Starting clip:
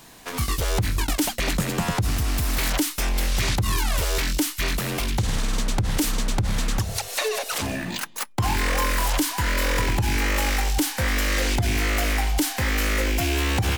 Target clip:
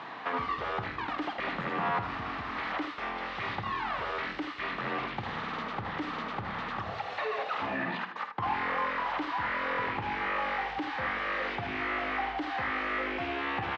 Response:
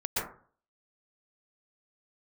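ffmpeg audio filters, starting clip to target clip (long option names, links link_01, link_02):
-filter_complex "[0:a]areverse,acompressor=mode=upward:threshold=-39dB:ratio=2.5,areverse,alimiter=level_in=2dB:limit=-24dB:level=0:latency=1:release=172,volume=-2dB,asplit=2[link_01][link_02];[link_02]highpass=frequency=720:poles=1,volume=14dB,asoftclip=type=tanh:threshold=-26dB[link_03];[link_01][link_03]amix=inputs=2:normalize=0,lowpass=frequency=1400:poles=1,volume=-6dB,highpass=120,equalizer=frequency=820:width_type=q:width=4:gain=5,equalizer=frequency=1200:width_type=q:width=4:gain=9,equalizer=frequency=1900:width_type=q:width=4:gain=5,lowpass=frequency=3800:width=0.5412,lowpass=frequency=3800:width=1.3066,aecho=1:1:50|80:0.266|0.376,asplit=2[link_04][link_05];[1:a]atrim=start_sample=2205,adelay=46[link_06];[link_05][link_06]afir=irnorm=-1:irlink=0,volume=-25dB[link_07];[link_04][link_07]amix=inputs=2:normalize=0"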